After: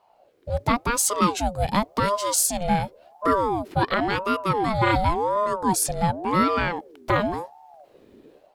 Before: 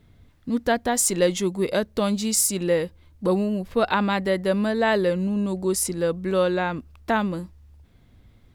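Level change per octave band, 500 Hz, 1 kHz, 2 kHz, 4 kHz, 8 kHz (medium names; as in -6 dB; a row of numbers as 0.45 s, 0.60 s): -3.5 dB, +6.5 dB, +0.5 dB, 0.0 dB, -0.5 dB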